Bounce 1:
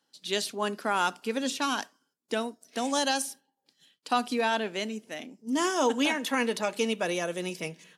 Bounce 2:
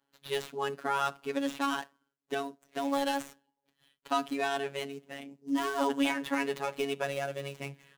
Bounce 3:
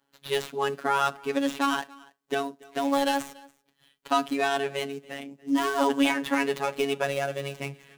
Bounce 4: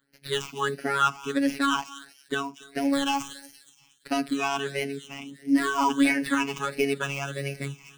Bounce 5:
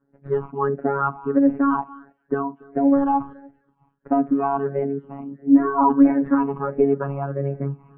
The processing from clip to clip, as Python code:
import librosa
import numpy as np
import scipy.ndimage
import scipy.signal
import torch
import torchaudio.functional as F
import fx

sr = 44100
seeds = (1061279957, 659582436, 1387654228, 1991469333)

y1 = scipy.signal.medfilt(x, 9)
y1 = fx.robotise(y1, sr, hz=139.0)
y2 = y1 + 10.0 ** (-23.5 / 20.0) * np.pad(y1, (int(285 * sr / 1000.0), 0))[:len(y1)]
y2 = F.gain(torch.from_numpy(y2), 5.5).numpy()
y3 = fx.echo_wet_highpass(y2, sr, ms=235, feedback_pct=39, hz=4100.0, wet_db=-8.0)
y3 = fx.phaser_stages(y3, sr, stages=8, low_hz=510.0, high_hz=1100.0, hz=1.5, feedback_pct=25)
y3 = F.gain(torch.from_numpy(y3), 4.0).numpy()
y4 = scipy.signal.sosfilt(scipy.signal.cheby2(4, 70, 4600.0, 'lowpass', fs=sr, output='sos'), y3)
y4 = F.gain(torch.from_numpy(y4), 8.0).numpy()